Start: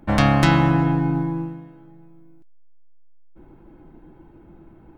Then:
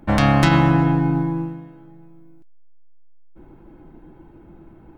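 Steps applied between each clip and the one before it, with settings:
boost into a limiter +5 dB
level −3 dB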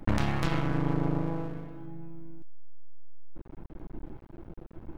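low-shelf EQ 110 Hz +10.5 dB
downward compressor 4 to 1, threshold −21 dBFS, peak gain reduction 11.5 dB
half-wave rectification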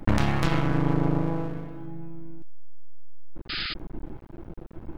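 sound drawn into the spectrogram noise, 0:03.49–0:03.74, 1,200–5,100 Hz −36 dBFS
level +4.5 dB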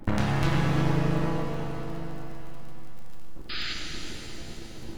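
surface crackle 48 per second −36 dBFS
echo machine with several playback heads 116 ms, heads all three, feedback 73%, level −19.5 dB
reverb with rising layers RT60 2.7 s, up +7 semitones, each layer −8 dB, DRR 0.5 dB
level −4 dB

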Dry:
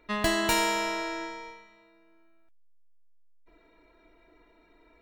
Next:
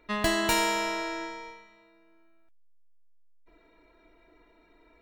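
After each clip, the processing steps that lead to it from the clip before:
no processing that can be heard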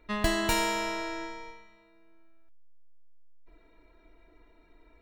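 low-shelf EQ 120 Hz +10 dB
level −2.5 dB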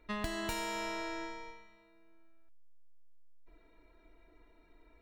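downward compressor 6 to 1, threshold −30 dBFS, peak gain reduction 9.5 dB
level −3.5 dB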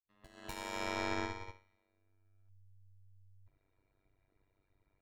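fade in at the beginning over 1.50 s
amplitude modulation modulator 97 Hz, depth 95%
expander for the loud parts 2.5 to 1, over −60 dBFS
level +11 dB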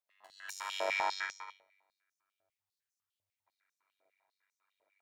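high-pass on a step sequencer 10 Hz 600–6,000 Hz

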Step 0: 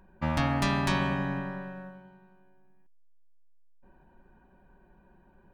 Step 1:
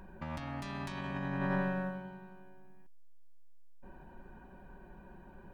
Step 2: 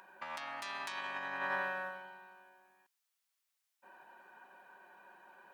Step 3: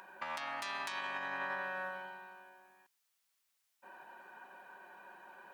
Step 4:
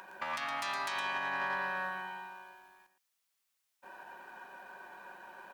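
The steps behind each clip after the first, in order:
compressor whose output falls as the input rises −37 dBFS, ratio −1
high-pass filter 920 Hz 12 dB per octave; level +4.5 dB
downward compressor 6 to 1, threshold −40 dBFS, peak gain reduction 8.5 dB; level +4 dB
on a send: single-tap delay 114 ms −6.5 dB; on the sum: leveller curve on the samples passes 1

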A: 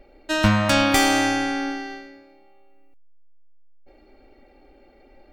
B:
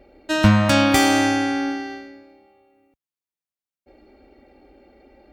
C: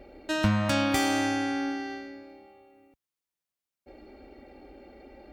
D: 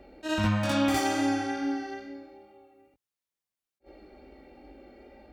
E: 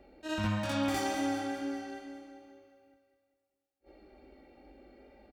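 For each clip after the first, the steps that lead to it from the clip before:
high-pass filter 58 Hz; low-shelf EQ 400 Hz +5.5 dB
downward compressor 1.5 to 1, threshold −45 dBFS, peak gain reduction 12.5 dB; level +2 dB
chorus effect 2.3 Hz, delay 18 ms, depth 2.5 ms; backwards echo 61 ms −4.5 dB; level that may rise only so fast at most 480 dB per second
repeating echo 200 ms, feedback 56%, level −10 dB; level −6 dB

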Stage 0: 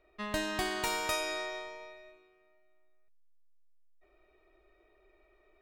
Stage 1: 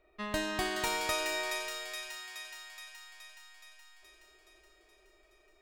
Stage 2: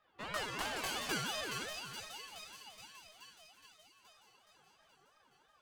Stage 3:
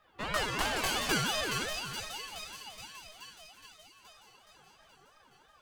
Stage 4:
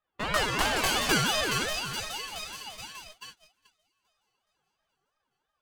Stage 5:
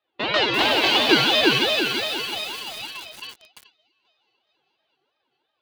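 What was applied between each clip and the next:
delay with a high-pass on its return 422 ms, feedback 65%, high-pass 1,600 Hz, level −4 dB
lower of the sound and its delayed copy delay 4.8 ms; multi-voice chorus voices 4, 0.77 Hz, delay 18 ms, depth 1.8 ms; ring modulator whose carrier an LFO sweeps 1,000 Hz, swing 25%, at 2.9 Hz; level +1.5 dB
low-shelf EQ 78 Hz +9.5 dB; level +7 dB
noise gate −49 dBFS, range −24 dB; level +5 dB
loudspeaker in its box 170–4,300 Hz, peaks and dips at 180 Hz −10 dB, 340 Hz +6 dB, 1,200 Hz −8 dB, 1,700 Hz −4 dB, 2,700 Hz +3 dB, 3,900 Hz +7 dB; feedback echo at a low word length 344 ms, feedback 35%, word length 7 bits, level −4 dB; level +7.5 dB

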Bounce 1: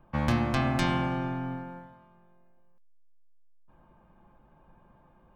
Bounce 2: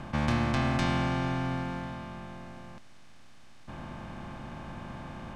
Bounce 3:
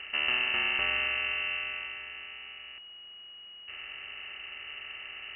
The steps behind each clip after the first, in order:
compressor on every frequency bin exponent 0.4; low-pass filter 8,700 Hz 12 dB per octave; level −4 dB
voice inversion scrambler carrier 2,900 Hz; level −2 dB

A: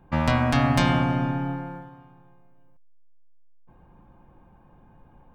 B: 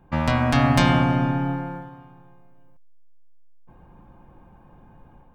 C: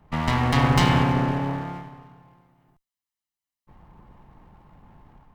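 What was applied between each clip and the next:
automatic gain control gain up to 4 dB
lower of the sound and its delayed copy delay 0.99 ms

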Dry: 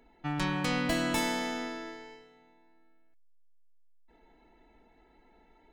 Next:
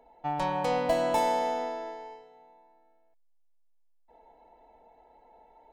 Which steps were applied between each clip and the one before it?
flat-topped bell 680 Hz +15.5 dB 1.3 octaves
level −5.5 dB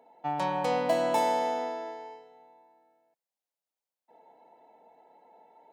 high-pass filter 140 Hz 24 dB per octave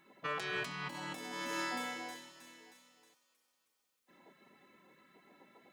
delay with a high-pass on its return 315 ms, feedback 56%, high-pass 1,500 Hz, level −13 dB
gate on every frequency bin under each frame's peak −15 dB weak
compressor whose output falls as the input rises −45 dBFS, ratio −1
level +4.5 dB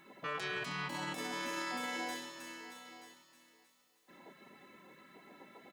brickwall limiter −36.5 dBFS, peak gain reduction 10.5 dB
single-tap delay 928 ms −15 dB
level +6 dB

